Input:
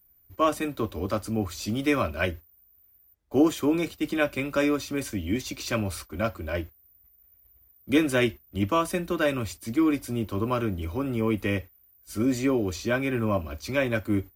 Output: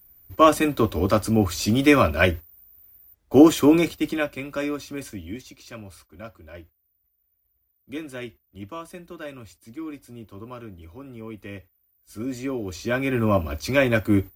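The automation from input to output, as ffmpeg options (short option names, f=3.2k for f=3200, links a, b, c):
-af "volume=26dB,afade=t=out:st=3.72:d=0.58:silence=0.266073,afade=t=out:st=5.04:d=0.52:silence=0.375837,afade=t=in:st=11.38:d=1.26:silence=0.398107,afade=t=in:st=12.64:d=0.76:silence=0.316228"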